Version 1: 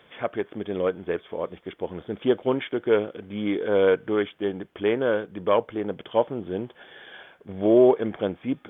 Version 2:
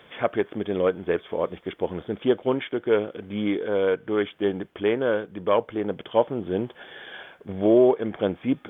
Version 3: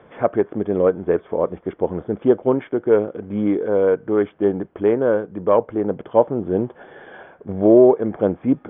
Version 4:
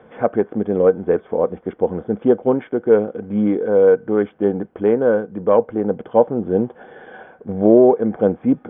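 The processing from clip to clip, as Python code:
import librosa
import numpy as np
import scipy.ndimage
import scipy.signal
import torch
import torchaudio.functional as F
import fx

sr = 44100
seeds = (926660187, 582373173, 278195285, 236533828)

y1 = fx.rider(x, sr, range_db=4, speed_s=0.5)
y2 = scipy.signal.sosfilt(scipy.signal.butter(2, 1100.0, 'lowpass', fs=sr, output='sos'), y1)
y2 = y2 * 10.0 ** (6.0 / 20.0)
y3 = fx.small_body(y2, sr, hz=(220.0, 480.0, 760.0, 1500.0), ring_ms=45, db=7)
y3 = y3 * 10.0 ** (-1.5 / 20.0)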